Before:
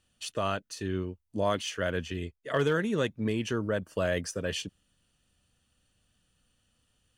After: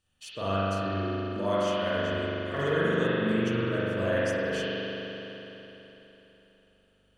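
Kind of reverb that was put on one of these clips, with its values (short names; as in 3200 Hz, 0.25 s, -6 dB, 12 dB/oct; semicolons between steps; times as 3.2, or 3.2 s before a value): spring tank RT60 3.7 s, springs 41 ms, chirp 25 ms, DRR -9.5 dB; gain -7 dB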